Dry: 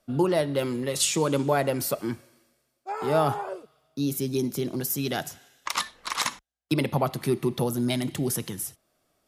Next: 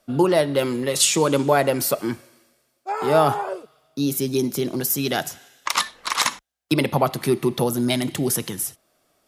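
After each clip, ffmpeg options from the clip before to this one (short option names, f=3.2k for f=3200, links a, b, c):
-af "lowshelf=f=180:g=-6.5,volume=6.5dB"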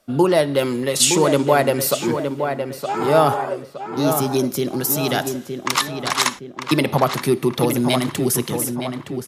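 -filter_complex "[0:a]asplit=2[a][b];[b]adelay=916,lowpass=f=2.6k:p=1,volume=-6.5dB,asplit=2[c][d];[d]adelay=916,lowpass=f=2.6k:p=1,volume=0.46,asplit=2[e][f];[f]adelay=916,lowpass=f=2.6k:p=1,volume=0.46,asplit=2[g][h];[h]adelay=916,lowpass=f=2.6k:p=1,volume=0.46,asplit=2[i][j];[j]adelay=916,lowpass=f=2.6k:p=1,volume=0.46[k];[a][c][e][g][i][k]amix=inputs=6:normalize=0,volume=2dB"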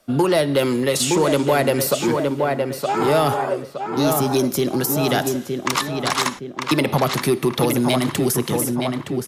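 -filter_complex "[0:a]acrossover=split=530|1700[a][b][c];[a]acompressor=threshold=-20dB:ratio=4[d];[b]acompressor=threshold=-24dB:ratio=4[e];[c]acompressor=threshold=-25dB:ratio=4[f];[d][e][f]amix=inputs=3:normalize=0,asplit=2[g][h];[h]asoftclip=type=hard:threshold=-18dB,volume=-6.5dB[i];[g][i]amix=inputs=2:normalize=0"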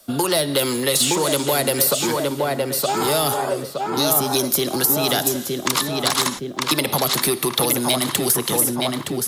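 -filter_complex "[0:a]acrossover=split=190|520|3300[a][b][c][d];[a]acompressor=threshold=-37dB:ratio=4[e];[b]acompressor=threshold=-30dB:ratio=4[f];[c]acompressor=threshold=-25dB:ratio=4[g];[d]acompressor=threshold=-30dB:ratio=4[h];[e][f][g][h]amix=inputs=4:normalize=0,aexciter=amount=1.5:drive=8.6:freq=3.4k,areverse,acompressor=mode=upward:threshold=-27dB:ratio=2.5,areverse,volume=3dB"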